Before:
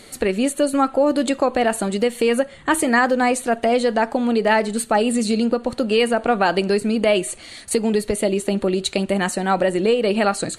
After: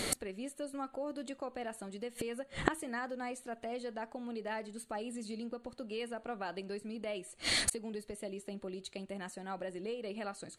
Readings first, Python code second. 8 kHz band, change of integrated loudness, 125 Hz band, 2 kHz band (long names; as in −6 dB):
−13.0 dB, −20.0 dB, −19.5 dB, −18.5 dB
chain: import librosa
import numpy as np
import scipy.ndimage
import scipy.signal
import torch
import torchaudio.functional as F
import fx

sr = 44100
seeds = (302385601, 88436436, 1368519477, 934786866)

y = fx.gate_flip(x, sr, shuts_db=-22.0, range_db=-30)
y = y * 10.0 ** (7.5 / 20.0)